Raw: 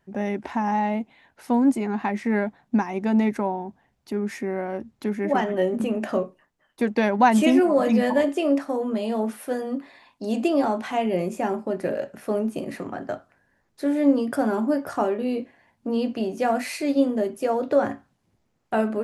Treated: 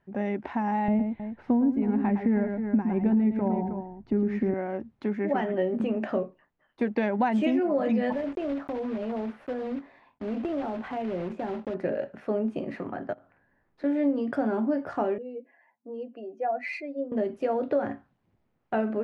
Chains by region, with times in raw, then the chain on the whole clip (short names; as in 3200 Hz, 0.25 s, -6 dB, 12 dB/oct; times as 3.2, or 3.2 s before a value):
0.88–4.54 RIAA curve playback + tapped delay 0.11/0.315 s -8/-13.5 dB
8.12–11.75 block floating point 3-bit + high shelf 2300 Hz -11 dB + compressor 3:1, threshold -26 dBFS
13.13–13.84 high shelf 4900 Hz -11 dB + compressor 10:1, threshold -44 dBFS + doubler 47 ms -6 dB
15.18–17.12 spectral contrast raised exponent 1.7 + HPF 600 Hz + dynamic EQ 2200 Hz, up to +5 dB, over -46 dBFS, Q 4.6
whole clip: LPF 2700 Hz 12 dB/oct; dynamic EQ 1100 Hz, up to -5 dB, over -39 dBFS, Q 2.4; compressor, threshold -19 dBFS; gain -2 dB